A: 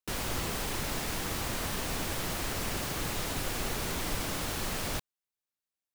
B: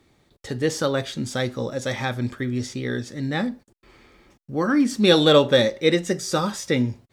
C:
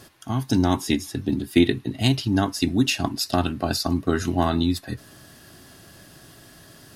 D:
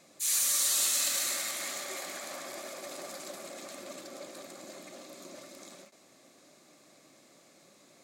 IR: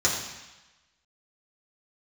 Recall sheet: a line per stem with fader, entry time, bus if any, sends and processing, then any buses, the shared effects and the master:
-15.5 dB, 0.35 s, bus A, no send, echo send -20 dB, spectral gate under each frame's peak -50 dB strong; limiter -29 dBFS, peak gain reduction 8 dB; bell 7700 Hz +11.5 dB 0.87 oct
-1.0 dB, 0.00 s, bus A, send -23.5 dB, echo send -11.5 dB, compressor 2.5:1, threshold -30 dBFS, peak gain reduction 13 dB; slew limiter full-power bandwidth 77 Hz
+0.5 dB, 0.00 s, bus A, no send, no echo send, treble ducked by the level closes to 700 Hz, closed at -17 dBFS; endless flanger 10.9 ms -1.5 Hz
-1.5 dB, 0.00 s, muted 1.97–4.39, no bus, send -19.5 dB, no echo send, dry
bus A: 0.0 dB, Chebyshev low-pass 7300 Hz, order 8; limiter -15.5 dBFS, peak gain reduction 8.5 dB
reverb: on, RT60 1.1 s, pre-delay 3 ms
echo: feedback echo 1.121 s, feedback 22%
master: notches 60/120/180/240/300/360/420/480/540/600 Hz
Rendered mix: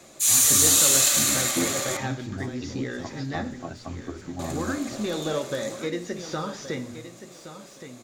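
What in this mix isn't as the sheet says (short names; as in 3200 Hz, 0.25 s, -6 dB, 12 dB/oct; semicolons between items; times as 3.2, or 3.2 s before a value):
stem C +0.5 dB -> -7.5 dB; stem D -1.5 dB -> +8.0 dB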